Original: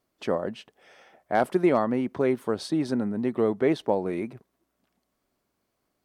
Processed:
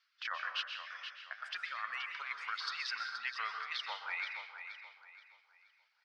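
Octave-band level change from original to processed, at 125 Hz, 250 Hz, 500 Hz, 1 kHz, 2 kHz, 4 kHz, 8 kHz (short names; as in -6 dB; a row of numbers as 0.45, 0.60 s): under -40 dB, under -40 dB, -36.5 dB, -10.5 dB, +1.0 dB, +3.5 dB, -9.0 dB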